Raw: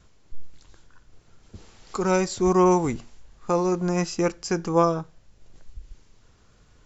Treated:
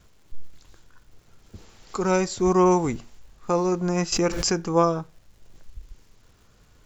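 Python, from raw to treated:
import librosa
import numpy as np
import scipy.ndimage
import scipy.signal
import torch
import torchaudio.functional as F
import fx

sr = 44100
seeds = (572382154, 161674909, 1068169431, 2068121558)

y = fx.dmg_crackle(x, sr, seeds[0], per_s=470.0, level_db=-53.0)
y = fx.pre_swell(y, sr, db_per_s=34.0, at=(4.12, 4.53))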